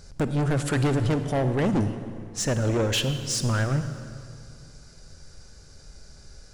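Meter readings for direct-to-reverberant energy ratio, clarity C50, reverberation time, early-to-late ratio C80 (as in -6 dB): 9.5 dB, 9.5 dB, 2.3 s, 11.0 dB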